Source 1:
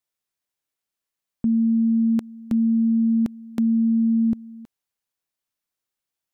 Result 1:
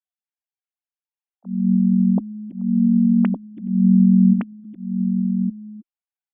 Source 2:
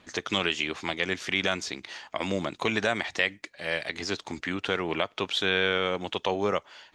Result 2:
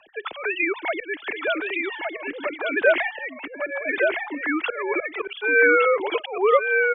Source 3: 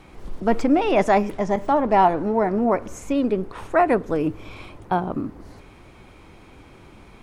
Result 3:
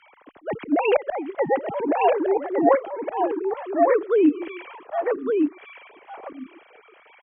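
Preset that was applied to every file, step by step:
three sine waves on the formant tracks
volume swells 269 ms
frequency shifter −20 Hz
on a send: single-tap delay 1,163 ms −4 dB
on the sum: normalise the peak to −6 dBFS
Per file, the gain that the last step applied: +3.0, +8.5, +3.0 decibels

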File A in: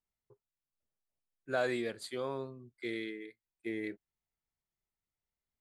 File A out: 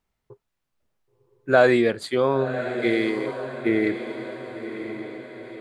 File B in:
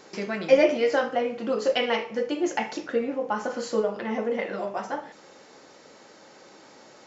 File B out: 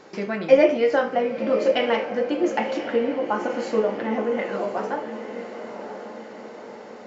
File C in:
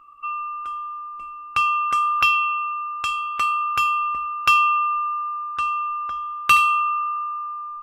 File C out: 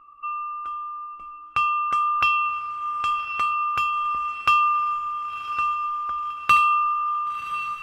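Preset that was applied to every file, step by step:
high-shelf EQ 4,100 Hz −12 dB
feedback delay with all-pass diffusion 1,052 ms, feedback 53%, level −10 dB
loudness normalisation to −23 LKFS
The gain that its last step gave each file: +16.5, +3.5, −0.5 decibels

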